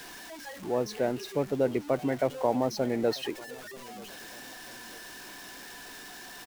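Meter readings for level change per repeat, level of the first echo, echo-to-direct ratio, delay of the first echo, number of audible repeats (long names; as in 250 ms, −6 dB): −7.0 dB, −22.5 dB, −21.5 dB, 941 ms, 2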